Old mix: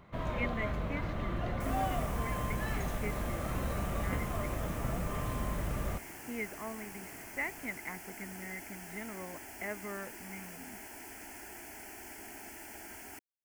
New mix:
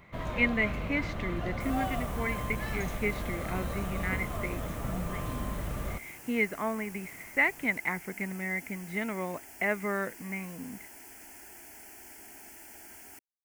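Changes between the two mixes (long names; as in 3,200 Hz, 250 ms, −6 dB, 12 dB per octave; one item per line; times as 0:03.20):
speech +10.0 dB
second sound −5.0 dB
master: add high-shelf EQ 4,200 Hz +6 dB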